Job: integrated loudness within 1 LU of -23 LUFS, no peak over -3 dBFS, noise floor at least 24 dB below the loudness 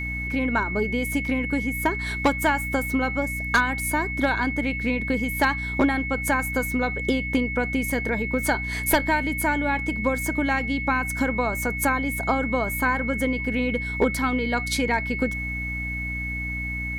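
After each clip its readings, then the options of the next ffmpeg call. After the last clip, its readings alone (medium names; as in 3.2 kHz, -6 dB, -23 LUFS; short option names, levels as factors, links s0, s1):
hum 60 Hz; highest harmonic 300 Hz; hum level -30 dBFS; steady tone 2.2 kHz; tone level -29 dBFS; loudness -24.0 LUFS; peak level -10.0 dBFS; loudness target -23.0 LUFS
-> -af "bandreject=f=60:t=h:w=6,bandreject=f=120:t=h:w=6,bandreject=f=180:t=h:w=6,bandreject=f=240:t=h:w=6,bandreject=f=300:t=h:w=6"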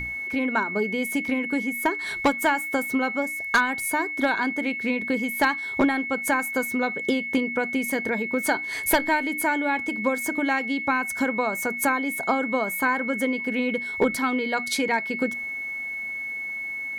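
hum not found; steady tone 2.2 kHz; tone level -29 dBFS
-> -af "bandreject=f=2200:w=30"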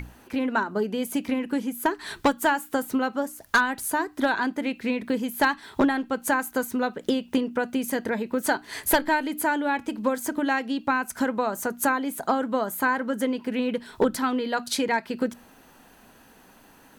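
steady tone not found; loudness -26.0 LUFS; peak level -11.0 dBFS; loudness target -23.0 LUFS
-> -af "volume=1.41"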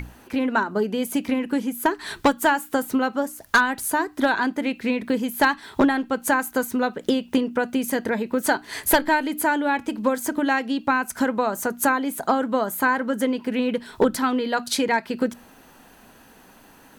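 loudness -23.0 LUFS; peak level -8.0 dBFS; noise floor -51 dBFS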